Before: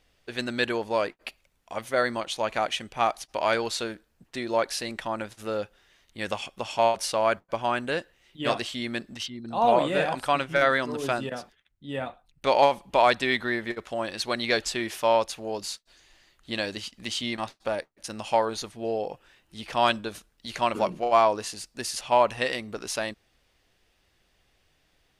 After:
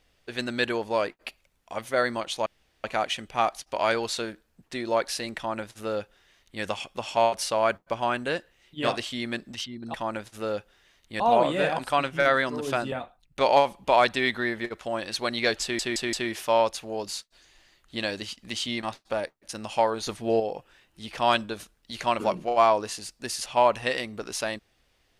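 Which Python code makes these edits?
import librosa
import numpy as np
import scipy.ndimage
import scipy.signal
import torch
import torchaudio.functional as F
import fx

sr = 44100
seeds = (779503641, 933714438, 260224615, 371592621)

y = fx.edit(x, sr, fx.insert_room_tone(at_s=2.46, length_s=0.38),
    fx.duplicate(start_s=4.99, length_s=1.26, to_s=9.56),
    fx.cut(start_s=11.28, length_s=0.7),
    fx.stutter(start_s=14.68, slice_s=0.17, count=4),
    fx.clip_gain(start_s=18.62, length_s=0.33, db=6.0), tone=tone)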